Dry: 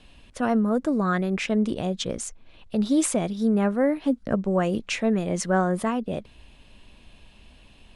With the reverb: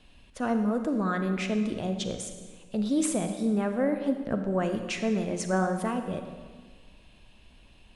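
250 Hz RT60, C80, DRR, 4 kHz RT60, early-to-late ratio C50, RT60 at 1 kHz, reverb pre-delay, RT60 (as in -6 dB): 1.6 s, 8.5 dB, 6.5 dB, 1.3 s, 7.5 dB, 1.5 s, 32 ms, 1.5 s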